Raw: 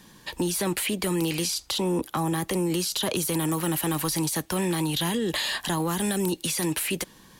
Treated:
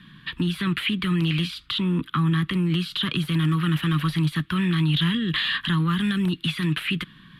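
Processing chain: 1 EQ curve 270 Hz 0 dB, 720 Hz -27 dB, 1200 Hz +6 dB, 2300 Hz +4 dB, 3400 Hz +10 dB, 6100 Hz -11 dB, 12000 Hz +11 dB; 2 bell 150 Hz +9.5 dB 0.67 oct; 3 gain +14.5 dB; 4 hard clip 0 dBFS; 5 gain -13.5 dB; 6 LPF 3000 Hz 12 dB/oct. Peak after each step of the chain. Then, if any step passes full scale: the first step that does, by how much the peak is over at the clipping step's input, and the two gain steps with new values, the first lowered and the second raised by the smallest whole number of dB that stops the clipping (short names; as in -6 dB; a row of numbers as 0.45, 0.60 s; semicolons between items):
-6.5, -6.0, +8.5, 0.0, -13.5, -13.5 dBFS; step 3, 8.5 dB; step 3 +5.5 dB, step 5 -4.5 dB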